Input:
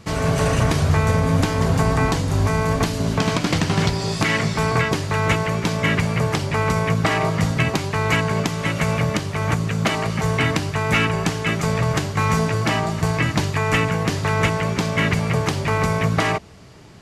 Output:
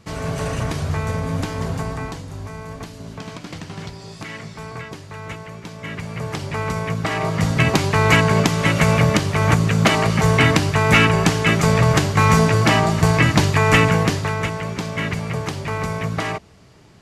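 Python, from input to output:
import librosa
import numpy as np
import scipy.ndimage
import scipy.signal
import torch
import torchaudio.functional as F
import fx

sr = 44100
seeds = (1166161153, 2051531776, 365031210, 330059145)

y = fx.gain(x, sr, db=fx.line((1.64, -5.5), (2.4, -13.5), (5.75, -13.5), (6.46, -4.0), (7.05, -4.0), (7.79, 5.0), (13.98, 5.0), (14.41, -4.5)))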